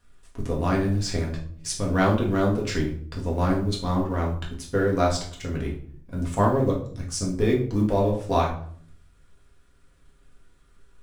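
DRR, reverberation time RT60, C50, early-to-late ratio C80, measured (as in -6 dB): -3.0 dB, 0.55 s, 7.0 dB, 12.0 dB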